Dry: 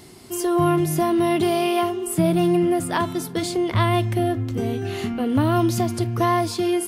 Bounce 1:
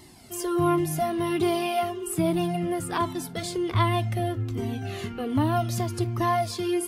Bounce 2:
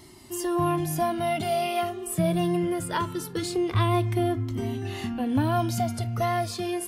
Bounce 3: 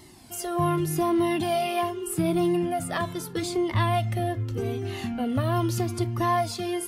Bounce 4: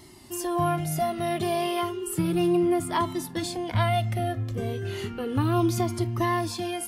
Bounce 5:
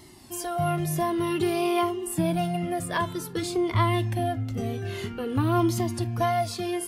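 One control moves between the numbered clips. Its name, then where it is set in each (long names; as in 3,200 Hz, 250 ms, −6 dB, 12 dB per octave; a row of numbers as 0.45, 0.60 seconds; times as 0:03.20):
flanger whose copies keep moving one way, speed: 1.3, 0.22, 0.82, 0.33, 0.52 Hertz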